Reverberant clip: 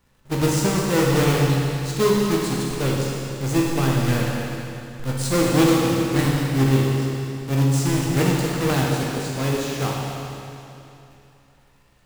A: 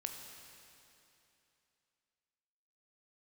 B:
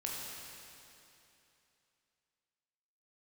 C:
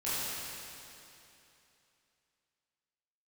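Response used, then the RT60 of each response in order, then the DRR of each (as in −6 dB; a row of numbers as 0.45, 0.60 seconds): B; 2.9, 2.9, 2.9 seconds; 3.5, −3.5, −12.5 decibels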